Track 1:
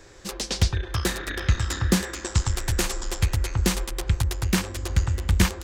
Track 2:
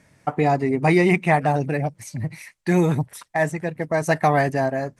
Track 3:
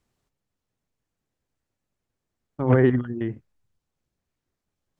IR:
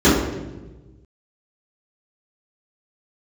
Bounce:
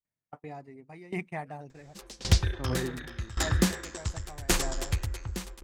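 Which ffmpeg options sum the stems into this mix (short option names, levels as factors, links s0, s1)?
-filter_complex "[0:a]adelay=1700,volume=1.12[s0];[1:a]adelay=50,volume=0.188[s1];[2:a]volume=0.473[s2];[s0][s1][s2]amix=inputs=3:normalize=0,agate=range=0.0794:threshold=0.0126:ratio=16:detection=peak,aeval=exprs='val(0)*pow(10,-19*if(lt(mod(0.89*n/s,1),2*abs(0.89)/1000),1-mod(0.89*n/s,1)/(2*abs(0.89)/1000),(mod(0.89*n/s,1)-2*abs(0.89)/1000)/(1-2*abs(0.89)/1000))/20)':c=same"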